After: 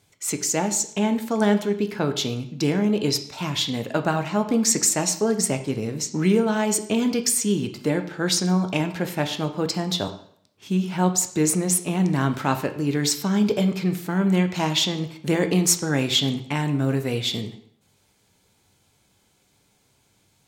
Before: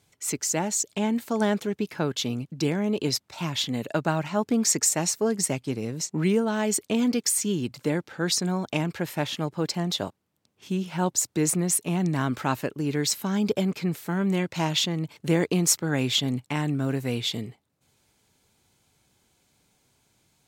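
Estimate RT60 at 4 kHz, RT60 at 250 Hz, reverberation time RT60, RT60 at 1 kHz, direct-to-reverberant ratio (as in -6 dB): 0.60 s, 0.55 s, 0.60 s, 0.60 s, 7.0 dB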